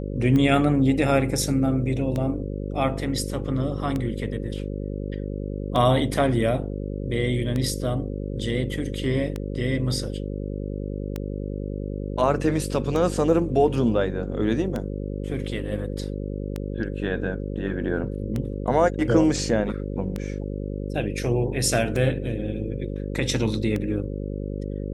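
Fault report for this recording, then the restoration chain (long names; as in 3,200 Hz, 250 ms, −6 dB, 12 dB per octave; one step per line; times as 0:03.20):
mains buzz 50 Hz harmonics 11 −30 dBFS
scratch tick 33 1/3 rpm −15 dBFS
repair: click removal
hum removal 50 Hz, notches 11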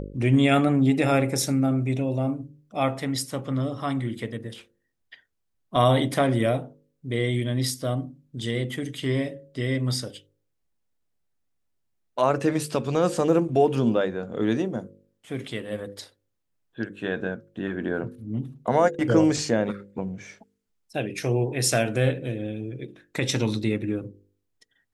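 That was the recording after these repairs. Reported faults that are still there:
none of them is left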